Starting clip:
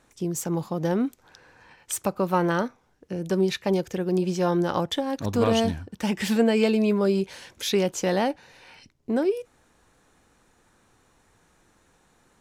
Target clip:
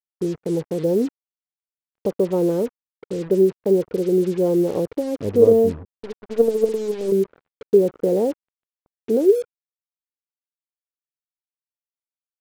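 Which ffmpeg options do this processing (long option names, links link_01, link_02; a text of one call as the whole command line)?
ffmpeg -i in.wav -filter_complex "[0:a]asettb=1/sr,asplit=3[link_01][link_02][link_03];[link_01]atrim=end=5.854[link_04];[link_02]atrim=start=5.85:end=7.12,asetpts=PTS-STARTPTS,afade=type=in:duration=0.004:curve=qsin,afade=type=out:start_time=1.266:duration=0.004:curve=qsin,aeval=exprs='0.376*(cos(1*acos(clip(val(0)/0.376,-1,1)))-cos(1*PI/2))+0.0944*(cos(3*acos(clip(val(0)/0.376,-1,1)))-cos(3*PI/2))+0.00531*(cos(6*acos(clip(val(0)/0.376,-1,1)))-cos(6*PI/2))+0.015*(cos(7*acos(clip(val(0)/0.376,-1,1)))-cos(7*PI/2))+0.015*(cos(8*acos(clip(val(0)/0.376,-1,1)))-cos(8*PI/2))':channel_layout=same[link_05];[link_03]atrim=start=7.116[link_06];[link_04][link_05]acrossfade=duration=0.004:curve1=hsin:curve2=qsin[link_07];[link_07][link_06]acrossfade=duration=0.004:curve1=qsin:curve2=hsin,lowpass=frequency=450:width_type=q:width=4.9,acrusher=bits=5:mix=0:aa=0.5,volume=-1dB" out.wav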